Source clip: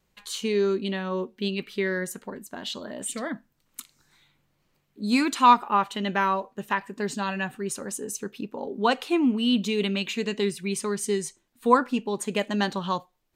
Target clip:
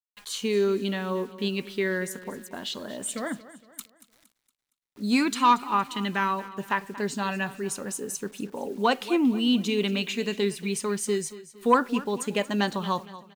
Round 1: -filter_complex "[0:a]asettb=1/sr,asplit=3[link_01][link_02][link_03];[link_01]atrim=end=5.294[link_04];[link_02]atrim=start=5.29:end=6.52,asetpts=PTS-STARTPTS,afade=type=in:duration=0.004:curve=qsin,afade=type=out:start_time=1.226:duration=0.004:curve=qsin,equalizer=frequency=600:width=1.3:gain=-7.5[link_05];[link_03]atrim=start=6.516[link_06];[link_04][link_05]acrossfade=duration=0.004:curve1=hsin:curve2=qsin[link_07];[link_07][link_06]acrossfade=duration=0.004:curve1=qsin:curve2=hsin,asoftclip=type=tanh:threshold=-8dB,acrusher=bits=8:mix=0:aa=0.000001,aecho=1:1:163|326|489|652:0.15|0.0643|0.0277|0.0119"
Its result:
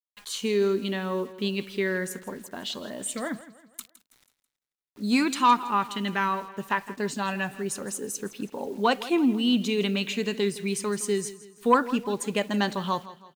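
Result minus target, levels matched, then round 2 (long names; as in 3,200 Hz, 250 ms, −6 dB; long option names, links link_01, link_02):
echo 69 ms early
-filter_complex "[0:a]asettb=1/sr,asplit=3[link_01][link_02][link_03];[link_01]atrim=end=5.294[link_04];[link_02]atrim=start=5.29:end=6.52,asetpts=PTS-STARTPTS,afade=type=in:duration=0.004:curve=qsin,afade=type=out:start_time=1.226:duration=0.004:curve=qsin,equalizer=frequency=600:width=1.3:gain=-7.5[link_05];[link_03]atrim=start=6.516[link_06];[link_04][link_05]acrossfade=duration=0.004:curve1=hsin:curve2=qsin[link_07];[link_07][link_06]acrossfade=duration=0.004:curve1=qsin:curve2=hsin,asoftclip=type=tanh:threshold=-8dB,acrusher=bits=8:mix=0:aa=0.000001,aecho=1:1:232|464|696|928:0.15|0.0643|0.0277|0.0119"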